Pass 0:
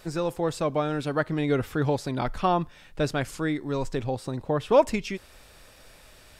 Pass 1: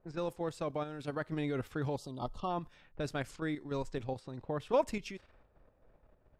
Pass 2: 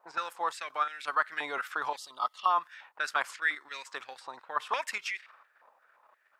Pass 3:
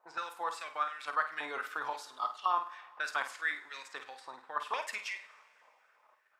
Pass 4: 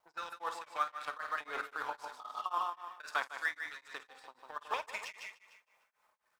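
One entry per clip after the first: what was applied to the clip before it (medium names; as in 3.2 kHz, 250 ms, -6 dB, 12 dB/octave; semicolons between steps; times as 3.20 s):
level-controlled noise filter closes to 650 Hz, open at -24 dBFS; time-frequency box 1.97–2.50 s, 1.3–2.7 kHz -21 dB; level held to a coarse grid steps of 9 dB; trim -7 dB
step-sequenced high-pass 5.7 Hz 930–2000 Hz; trim +7 dB
flutter echo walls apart 8.7 m, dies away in 0.31 s; reverberation, pre-delay 3 ms, DRR 10.5 dB; trim -4.5 dB
companding laws mixed up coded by A; feedback delay 150 ms, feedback 40%, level -6.5 dB; tremolo of two beating tones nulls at 3.8 Hz; trim +1.5 dB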